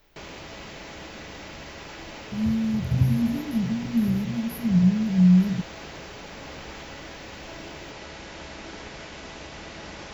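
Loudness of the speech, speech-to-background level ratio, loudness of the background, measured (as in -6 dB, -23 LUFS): -23.0 LUFS, 16.5 dB, -39.5 LUFS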